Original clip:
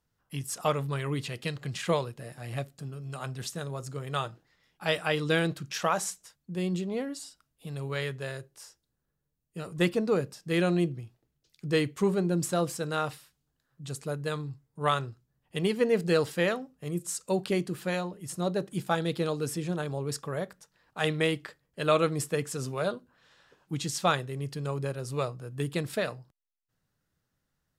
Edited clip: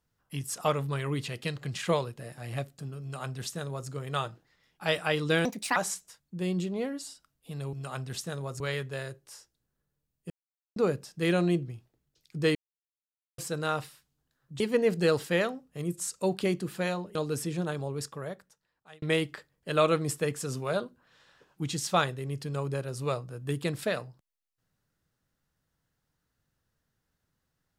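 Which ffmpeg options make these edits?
-filter_complex "[0:a]asplit=12[a][b][c][d][e][f][g][h][i][j][k][l];[a]atrim=end=5.454[m];[b]atrim=start=5.45:end=5.92,asetpts=PTS-STARTPTS,asetrate=66591,aresample=44100,atrim=end_sample=13726,asetpts=PTS-STARTPTS[n];[c]atrim=start=5.916:end=7.892[o];[d]atrim=start=3.018:end=3.892[p];[e]atrim=start=7.888:end=9.59,asetpts=PTS-STARTPTS,afade=t=out:st=1.698:d=0.004:c=hsin[q];[f]atrim=start=9.59:end=10.05,asetpts=PTS-STARTPTS,volume=0[r];[g]atrim=start=10.05:end=11.84,asetpts=PTS-STARTPTS,afade=t=in:d=0.004:c=hsin,afade=t=out:st=1.786:d=0.004:c=hsin[s];[h]atrim=start=11.84:end=12.67,asetpts=PTS-STARTPTS,volume=0[t];[i]atrim=start=12.67:end=13.892,asetpts=PTS-STARTPTS,afade=t=in:d=0.004:c=hsin[u];[j]atrim=start=15.668:end=18.222[v];[k]atrim=start=19.258:end=21.13,asetpts=PTS-STARTPTS,afade=t=out:st=0.552:d=1.32[w];[l]atrim=start=21.13,asetpts=PTS-STARTPTS,afade=t=in:d=0.004:c=hsin[x];[m][n]acrossfade=d=0.004:c1=hsin:c2=hsin[y];[y][o]acrossfade=d=0.004:c1=hsin:c2=hsin[z];[z][p]acrossfade=d=0.004:c1=hsin:c2=hsin[aa];[q][r][s][t][u]concat=n=5:v=0:a=1[ab];[aa][ab]acrossfade=d=0.004:c1=hsin:c2=hsin[ac];[ac][v]acrossfade=d=0.004:c1=hsin:c2=hsin[ad];[w][x]concat=n=2:v=0:a=1[ae];[ad][ae]acrossfade=d=0.004:c1=hsin:c2=hsin"

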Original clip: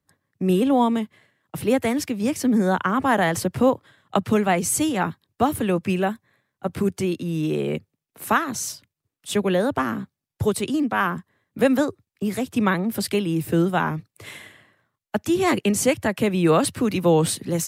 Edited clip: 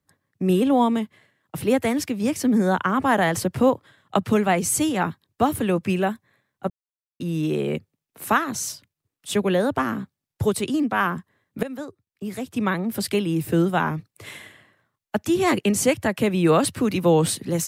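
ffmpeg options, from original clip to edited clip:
-filter_complex "[0:a]asplit=4[a][b][c][d];[a]atrim=end=6.7,asetpts=PTS-STARTPTS,afade=t=out:st=6.696:d=0.004:c=hsin[e];[b]atrim=start=6.7:end=7.2,asetpts=PTS-STARTPTS,volume=0[f];[c]atrim=start=7.2:end=11.63,asetpts=PTS-STARTPTS,afade=t=in:d=0.004:c=hsin,afade=t=out:st=4.426:d=0.004:c=hsin:silence=0.133352[g];[d]atrim=start=11.63,asetpts=PTS-STARTPTS,afade=t=in:d=1.53:silence=0.133352[h];[e][f][g][h]concat=n=4:v=0:a=1"

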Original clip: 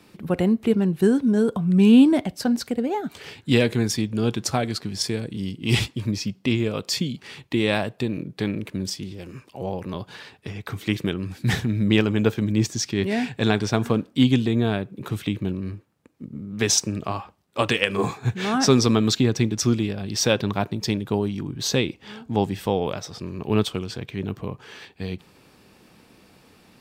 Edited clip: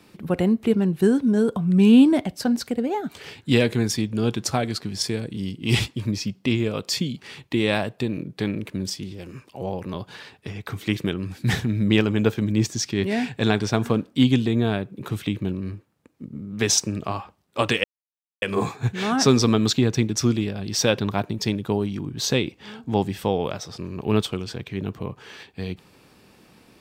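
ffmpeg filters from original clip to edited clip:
-filter_complex "[0:a]asplit=2[a][b];[a]atrim=end=17.84,asetpts=PTS-STARTPTS,afade=t=out:st=17.836:d=0.004:c=hsin,apad=pad_dur=0.58[c];[b]atrim=start=17.84,asetpts=PTS-STARTPTS,afade=t=in:d=0.004:c=hsin[d];[c][d]concat=n=2:v=0:a=1"

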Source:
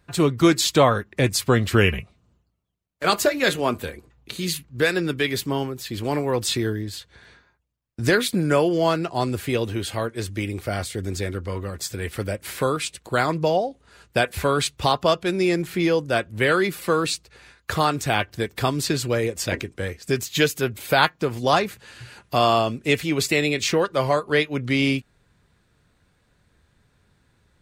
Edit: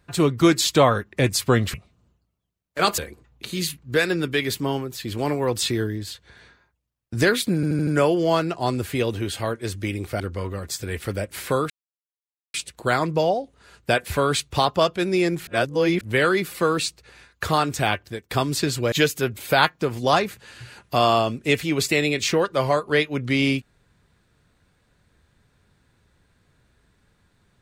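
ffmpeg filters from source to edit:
-filter_complex "[0:a]asplit=13[a][b][c][d][e][f][g][h][i][j][k][l][m];[a]atrim=end=1.742[n];[b]atrim=start=1.988:end=3.232[o];[c]atrim=start=3.838:end=8.492[p];[d]atrim=start=8.408:end=8.492[q];[e]atrim=start=8.408:end=8.492[r];[f]atrim=start=8.408:end=8.492[s];[g]atrim=start=8.408:end=10.742[t];[h]atrim=start=11.308:end=12.81,asetpts=PTS-STARTPTS,afade=t=out:st=1.498:d=0.004:c=hsin,apad=pad_dur=0.84[u];[i]atrim=start=12.81:end=15.742,asetpts=PTS-STARTPTS,afade=t=in:d=0.004:c=hsin[v];[j]atrim=start=15.738:end=16.282,asetpts=PTS-STARTPTS,areverse[w];[k]atrim=start=16.278:end=18.58,asetpts=PTS-STARTPTS,afade=t=out:st=1.872:d=0.43:silence=0.133352[x];[l]atrim=start=18.58:end=19.192,asetpts=PTS-STARTPTS,afade=t=in:d=0.004:c=hsin:silence=0.133352[y];[m]atrim=start=20.318[z];[n][o]acrossfade=d=0.004:c1=hsin:c2=hsin[aa];[aa][p]acrossfade=d=0.004:c1=hsin:c2=hsin[ab];[ab][q]acrossfade=d=0.004:c1=hsin:c2=hsin[ac];[ac][r]acrossfade=d=0.004:c1=hsin:c2=hsin[ad];[ad][s]acrossfade=d=0.004:c1=hsin:c2=hsin[ae];[ae][t]acrossfade=d=0.004:c1=hsin:c2=hsin[af];[u][v]concat=n=2:v=0:a=1[ag];[af][ag]acrossfade=d=0.004:c1=hsin:c2=hsin[ah];[ah][w]acrossfade=d=0.004:c1=hsin:c2=hsin[ai];[x][y]concat=n=2:v=0:a=1[aj];[ai][aj]acrossfade=d=0.004:c1=hsin:c2=hsin[ak];[ak][z]acrossfade=d=0.004:c1=hsin:c2=hsin"

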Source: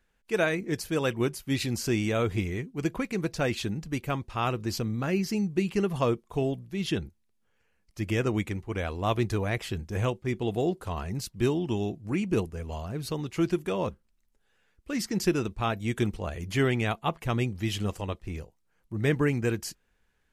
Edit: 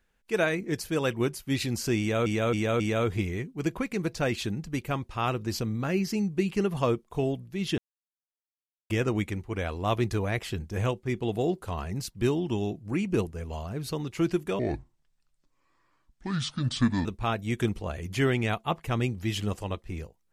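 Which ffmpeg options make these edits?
-filter_complex "[0:a]asplit=8[a][b][c][d][e][f][g][h];[a]atrim=end=2.262[i];[b]atrim=start=1.988:end=2.262[j];[c]atrim=start=1.988:end=2.262[k];[d]atrim=start=1.988:end=6.97,asetpts=PTS-STARTPTS,afade=t=out:st=4.978:d=0.004:c=hsin[l];[e]atrim=start=6.97:end=8.09,asetpts=PTS-STARTPTS,volume=0[m];[f]atrim=start=8.09:end=13.784,asetpts=PTS-STARTPTS,afade=t=in:d=0.004:c=hsin[n];[g]atrim=start=13.78:end=15.43,asetpts=PTS-STARTPTS,asetrate=29547,aresample=44100,atrim=end_sample=108604,asetpts=PTS-STARTPTS[o];[h]atrim=start=15.426[p];[i][j]acrossfade=d=0.004:c1=hsin:c2=hsin[q];[q][k]acrossfade=d=0.004:c1=hsin:c2=hsin[r];[l][m][n]concat=n=3:v=0:a=1[s];[r][s]acrossfade=d=0.004:c1=hsin:c2=hsin[t];[t][o]acrossfade=d=0.004:c1=hsin:c2=hsin[u];[u][p]acrossfade=d=0.004:c1=hsin:c2=hsin"

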